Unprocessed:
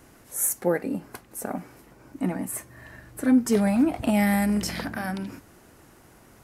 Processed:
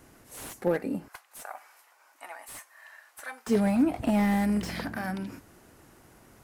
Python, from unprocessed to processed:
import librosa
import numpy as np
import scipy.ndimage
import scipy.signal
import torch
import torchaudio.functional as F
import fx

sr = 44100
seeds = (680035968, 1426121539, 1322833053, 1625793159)

y = fx.highpass(x, sr, hz=780.0, slope=24, at=(1.08, 3.47))
y = fx.slew_limit(y, sr, full_power_hz=81.0)
y = F.gain(torch.from_numpy(y), -2.5).numpy()